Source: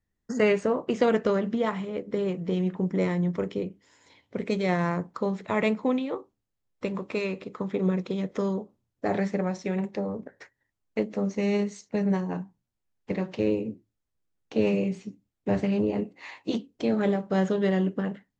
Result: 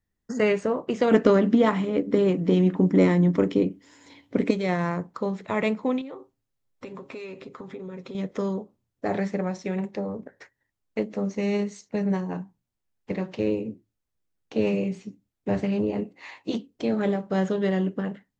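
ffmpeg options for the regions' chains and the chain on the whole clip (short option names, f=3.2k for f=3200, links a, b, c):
-filter_complex "[0:a]asettb=1/sr,asplit=3[a][b][c];[a]atrim=end=1.114[d];[b]atrim=start=1.11:end=4.51,asetpts=PTS-STARTPTS,afade=t=in:d=0.004:c=qsin,afade=t=out:st=3.396:d=0.004:c=qsin,equalizer=f=280:w=4.4:g=12,acontrast=35[e];[c]atrim=start=4.506[f];[d][e]acrossfade=d=0.004:c1=hsin:c2=qsin[g];[g][f]acrossfade=d=0.004:c1=qsin:c2=hsin,asettb=1/sr,asplit=3[h][i][j];[h]atrim=end=6.014[k];[i]atrim=start=6.01:end=8.15,asetpts=PTS-STARTPTS,afade=t=in:d=0.004:c=qsin,afade=t=out:st=2.136:d=0.004:c=qsin,aecho=1:1:7.5:0.51,atrim=end_sample=94374,acompressor=threshold=-36dB:ratio=4:attack=3.2:release=140:knee=1:detection=peak[l];[j]atrim=start=8.146[m];[k][l]acrossfade=d=0.004:c1=hsin:c2=qsin[n];[n][m]acrossfade=d=0.004:c1=qsin:c2=hsin"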